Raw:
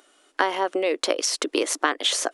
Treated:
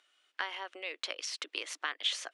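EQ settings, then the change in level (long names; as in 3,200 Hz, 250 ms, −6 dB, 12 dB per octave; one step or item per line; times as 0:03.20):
resonant band-pass 2,700 Hz, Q 1.2
−7.0 dB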